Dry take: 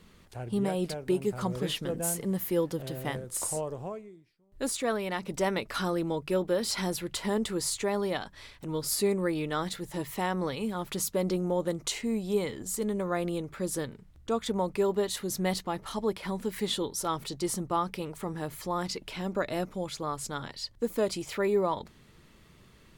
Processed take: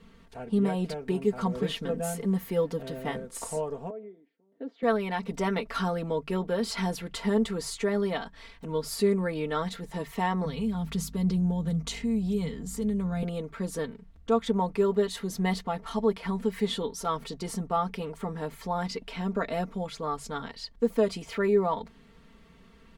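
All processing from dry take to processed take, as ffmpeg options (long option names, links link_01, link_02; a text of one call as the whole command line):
ffmpeg -i in.wav -filter_complex "[0:a]asettb=1/sr,asplit=3[link_01][link_02][link_03];[link_01]atrim=end=3.904[link_04];[link_02]atrim=start=3.9:end=4.83,asetpts=PTS-STARTPTS,afade=type=in:duration=0.004:curve=qsin,afade=type=out:start_time=0.926:duration=0.004:curve=qsin,acompressor=threshold=-44dB:ratio=4:attack=3.2:release=140:knee=1:detection=peak,highpass=frequency=230:width=0.5412,highpass=frequency=230:width=1.3066,equalizer=frequency=280:width_type=q:width=4:gain=9,equalizer=frequency=500:width_type=q:width=4:gain=8,equalizer=frequency=720:width_type=q:width=4:gain=4,equalizer=frequency=1100:width_type=q:width=4:gain=-8,equalizer=frequency=1500:width_type=q:width=4:gain=-3,equalizer=frequency=2500:width_type=q:width=4:gain=-9,lowpass=frequency=3100:width=0.5412,lowpass=frequency=3100:width=1.3066[link_05];[link_03]atrim=start=4.826[link_06];[link_04][link_05]acrossfade=duration=0.004:curve1=hsin:curve2=qsin[link_07];[link_07][link_06]acrossfade=duration=0.004:curve1=qsin:curve2=hsin,asettb=1/sr,asplit=3[link_08][link_09][link_10];[link_08]atrim=end=10.454[link_11];[link_09]atrim=start=10.45:end=13.23,asetpts=PTS-STARTPTS,afade=type=in:duration=0.004:curve=qsin,afade=type=out:start_time=2.776:duration=0.004:curve=qsin,equalizer=frequency=160:width_type=o:width=0.28:gain=14,acrossover=split=220|3000[link_12][link_13][link_14];[link_13]acompressor=threshold=-41dB:ratio=2.5:attack=3.2:release=140:knee=2.83:detection=peak[link_15];[link_12][link_15][link_14]amix=inputs=3:normalize=0,aeval=exprs='val(0)+0.00501*(sin(2*PI*50*n/s)+sin(2*PI*2*50*n/s)/2+sin(2*PI*3*50*n/s)/3+sin(2*PI*4*50*n/s)/4+sin(2*PI*5*50*n/s)/5)':channel_layout=same[link_16];[link_10]atrim=start=13.226[link_17];[link_11][link_16]acrossfade=duration=0.004:curve1=hsin:curve2=qsin[link_18];[link_18][link_17]acrossfade=duration=0.004:curve1=qsin:curve2=hsin,lowpass=frequency=2900:poles=1,aecho=1:1:4.4:0.85" out.wav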